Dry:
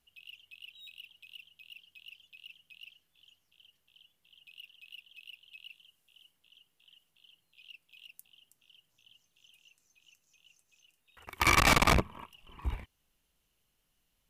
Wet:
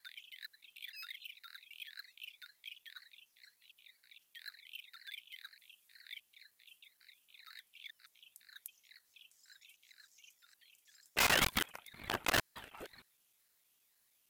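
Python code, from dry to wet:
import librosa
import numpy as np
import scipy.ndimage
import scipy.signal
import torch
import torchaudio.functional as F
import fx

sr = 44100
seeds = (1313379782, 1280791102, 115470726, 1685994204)

y = fx.block_reorder(x, sr, ms=155.0, group=4)
y = fx.riaa(y, sr, side='recording')
y = 10.0 ** (-19.0 / 20.0) * np.tanh(y / 10.0 ** (-19.0 / 20.0))
y = fx.high_shelf(y, sr, hz=7400.0, db=-6.5)
y = fx.ring_lfo(y, sr, carrier_hz=710.0, swing_pct=75, hz=2.0)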